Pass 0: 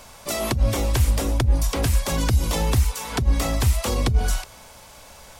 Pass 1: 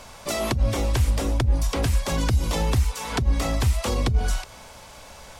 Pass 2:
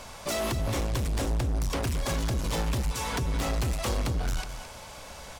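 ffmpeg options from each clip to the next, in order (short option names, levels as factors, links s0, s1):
-filter_complex "[0:a]highshelf=f=11000:g=-11,asplit=2[s0][s1];[s1]acompressor=threshold=0.0447:ratio=6,volume=1[s2];[s0][s2]amix=inputs=2:normalize=0,volume=0.631"
-af "asoftclip=type=hard:threshold=0.0473,aecho=1:1:217:0.299"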